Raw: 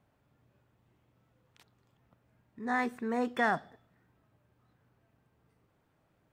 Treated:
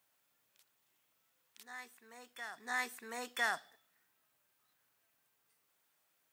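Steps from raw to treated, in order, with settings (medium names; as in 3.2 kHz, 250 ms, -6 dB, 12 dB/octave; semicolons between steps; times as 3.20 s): differentiator; reverse echo 1004 ms -12 dB; trim +9.5 dB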